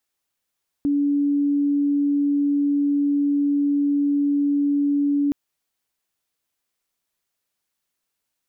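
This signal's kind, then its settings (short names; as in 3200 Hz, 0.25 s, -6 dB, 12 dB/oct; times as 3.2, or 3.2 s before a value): tone sine 286 Hz -17 dBFS 4.47 s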